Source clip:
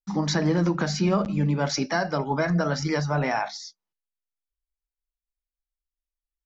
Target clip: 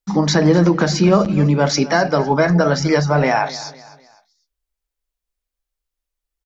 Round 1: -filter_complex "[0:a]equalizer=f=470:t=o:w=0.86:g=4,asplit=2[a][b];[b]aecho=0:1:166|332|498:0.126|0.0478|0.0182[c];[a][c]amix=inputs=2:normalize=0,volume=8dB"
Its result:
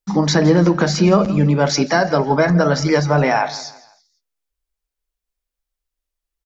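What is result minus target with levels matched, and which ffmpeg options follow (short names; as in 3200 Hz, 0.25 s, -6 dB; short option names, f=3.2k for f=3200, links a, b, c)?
echo 86 ms early
-filter_complex "[0:a]equalizer=f=470:t=o:w=0.86:g=4,asplit=2[a][b];[b]aecho=0:1:252|504|756:0.126|0.0478|0.0182[c];[a][c]amix=inputs=2:normalize=0,volume=8dB"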